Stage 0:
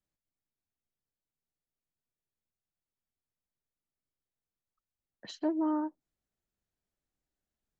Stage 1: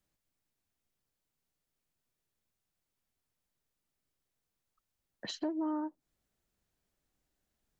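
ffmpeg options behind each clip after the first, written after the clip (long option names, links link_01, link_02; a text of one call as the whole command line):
ffmpeg -i in.wav -af "acompressor=threshold=-45dB:ratio=2.5,volume=7dB" out.wav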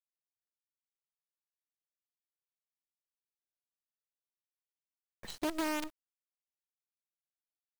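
ffmpeg -i in.wav -af "acrusher=bits=6:dc=4:mix=0:aa=0.000001,volume=-1dB" out.wav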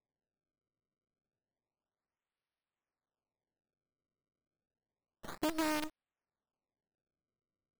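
ffmpeg -i in.wav -af "acrusher=samples=29:mix=1:aa=0.000001:lfo=1:lforange=46.4:lforate=0.3" out.wav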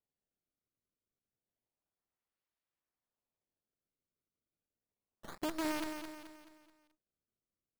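ffmpeg -i in.wav -af "aecho=1:1:215|430|645|860|1075:0.447|0.197|0.0865|0.0381|0.0167,volume=-3dB" out.wav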